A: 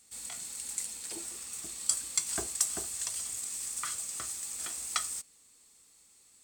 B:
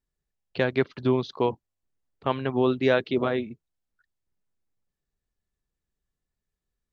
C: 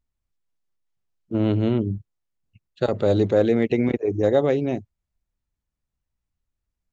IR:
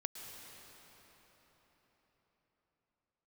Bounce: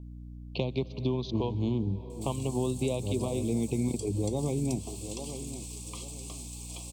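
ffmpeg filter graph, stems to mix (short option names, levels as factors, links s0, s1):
-filter_complex "[0:a]adelay=2100,volume=1.12[s0];[1:a]volume=1.26,asplit=3[s1][s2][s3];[s2]volume=0.237[s4];[2:a]aecho=1:1:0.9:0.57,volume=1,asplit=2[s5][s6];[s6]volume=0.106[s7];[s3]apad=whole_len=305393[s8];[s5][s8]sidechaincompress=threshold=0.0316:ratio=8:attack=9.7:release=169[s9];[3:a]atrim=start_sample=2205[s10];[s4][s10]afir=irnorm=-1:irlink=0[s11];[s7]aecho=0:1:843|1686|2529|3372:1|0.31|0.0961|0.0298[s12];[s0][s1][s9][s11][s12]amix=inputs=5:normalize=0,acrossover=split=180|4200[s13][s14][s15];[s13]acompressor=threshold=0.0251:ratio=4[s16];[s14]acompressor=threshold=0.0251:ratio=4[s17];[s15]acompressor=threshold=0.00501:ratio=4[s18];[s16][s17][s18]amix=inputs=3:normalize=0,aeval=exprs='val(0)+0.00794*(sin(2*PI*60*n/s)+sin(2*PI*2*60*n/s)/2+sin(2*PI*3*60*n/s)/3+sin(2*PI*4*60*n/s)/4+sin(2*PI*5*60*n/s)/5)':c=same,asuperstop=centerf=1600:order=8:qfactor=1.2"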